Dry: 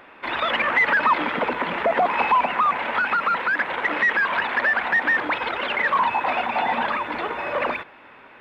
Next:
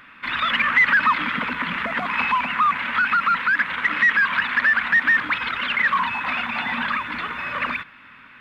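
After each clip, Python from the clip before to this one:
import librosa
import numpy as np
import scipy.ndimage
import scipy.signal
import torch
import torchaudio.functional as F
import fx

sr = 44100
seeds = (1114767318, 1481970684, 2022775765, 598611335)

y = fx.band_shelf(x, sr, hz=540.0, db=-16.0, octaves=1.7)
y = y * 10.0 ** (3.0 / 20.0)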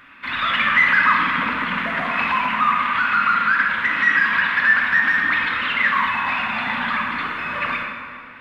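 y = fx.rev_plate(x, sr, seeds[0], rt60_s=2.2, hf_ratio=0.65, predelay_ms=0, drr_db=-1.0)
y = y * 10.0 ** (-1.5 / 20.0)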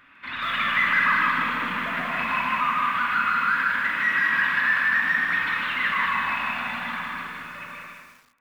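y = fx.fade_out_tail(x, sr, length_s=2.13)
y = y + 10.0 ** (-3.5 / 20.0) * np.pad(y, (int(154 * sr / 1000.0), 0))[:len(y)]
y = fx.echo_crushed(y, sr, ms=193, feedback_pct=35, bits=7, wet_db=-6.0)
y = y * 10.0 ** (-7.5 / 20.0)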